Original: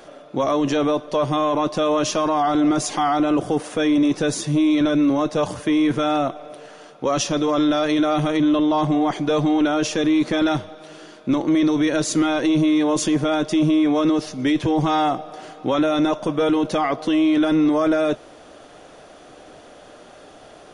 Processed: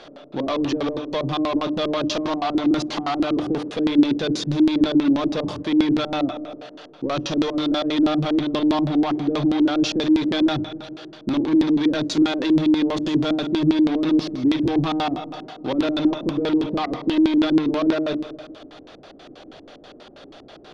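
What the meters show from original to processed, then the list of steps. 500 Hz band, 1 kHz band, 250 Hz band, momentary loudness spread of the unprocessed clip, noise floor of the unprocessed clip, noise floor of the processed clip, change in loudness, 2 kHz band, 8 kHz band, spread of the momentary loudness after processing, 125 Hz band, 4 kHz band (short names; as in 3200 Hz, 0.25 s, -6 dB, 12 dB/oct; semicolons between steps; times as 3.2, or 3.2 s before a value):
-4.0 dB, -5.5 dB, 0.0 dB, 6 LU, -45 dBFS, -45 dBFS, -1.0 dB, -3.0 dB, under -10 dB, 9 LU, -2.0 dB, +0.5 dB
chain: notches 60/120/180/240/300 Hz; Schroeder reverb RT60 1.9 s, DRR 12.5 dB; in parallel at -5 dB: wavefolder -23 dBFS; on the sum: LFO low-pass square 6.2 Hz 310–4100 Hz; gain -4 dB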